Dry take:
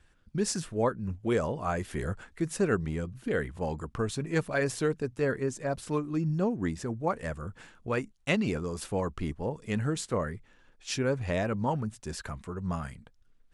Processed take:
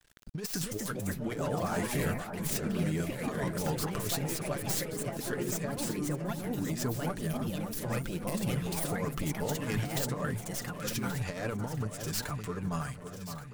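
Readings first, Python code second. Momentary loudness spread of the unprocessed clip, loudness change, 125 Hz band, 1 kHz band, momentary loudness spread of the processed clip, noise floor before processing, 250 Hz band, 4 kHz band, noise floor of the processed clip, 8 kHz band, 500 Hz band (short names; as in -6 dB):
9 LU, -2.0 dB, -0.5 dB, -3.0 dB, 4 LU, -62 dBFS, -2.0 dB, +2.0 dB, -43 dBFS, +3.5 dB, -5.5 dB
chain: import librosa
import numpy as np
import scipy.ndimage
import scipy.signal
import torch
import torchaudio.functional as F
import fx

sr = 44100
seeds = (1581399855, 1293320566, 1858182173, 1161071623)

p1 = fx.tracing_dist(x, sr, depth_ms=0.16)
p2 = fx.spec_box(p1, sr, start_s=7.05, length_s=1.8, low_hz=230.0, high_hz=8500.0, gain_db=-11)
p3 = fx.high_shelf(p2, sr, hz=3800.0, db=9.5)
p4 = p3 + 0.62 * np.pad(p3, (int(6.8 * sr / 1000.0), 0))[:len(p3)]
p5 = fx.over_compress(p4, sr, threshold_db=-30.0, ratio=-0.5)
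p6 = np.sign(p5) * np.maximum(np.abs(p5) - 10.0 ** (-53.0 / 20.0), 0.0)
p7 = fx.echo_pitch(p6, sr, ms=341, semitones=3, count=2, db_per_echo=-3.0)
p8 = p7 + fx.echo_alternate(p7, sr, ms=564, hz=1500.0, feedback_pct=66, wet_db=-8, dry=0)
p9 = fx.pre_swell(p8, sr, db_per_s=120.0)
y = p9 * 10.0 ** (-3.5 / 20.0)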